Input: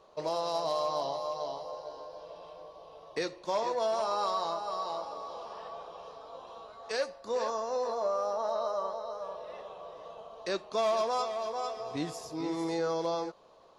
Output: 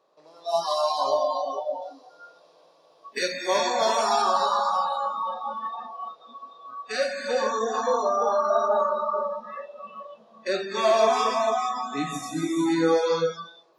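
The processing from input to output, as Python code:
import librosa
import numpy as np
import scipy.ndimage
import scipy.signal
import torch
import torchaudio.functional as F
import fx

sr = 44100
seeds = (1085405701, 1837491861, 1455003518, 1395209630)

y = fx.bin_compress(x, sr, power=0.6)
y = scipy.signal.sosfilt(scipy.signal.butter(2, 180.0, 'highpass', fs=sr, output='sos'), y)
y = fx.rev_gated(y, sr, seeds[0], gate_ms=450, shape='flat', drr_db=-1.5)
y = fx.noise_reduce_blind(y, sr, reduce_db=29)
y = fx.high_shelf(y, sr, hz=3700.0, db=9.5, at=(1.82, 4.22))
y = F.gain(torch.from_numpy(y), 4.5).numpy()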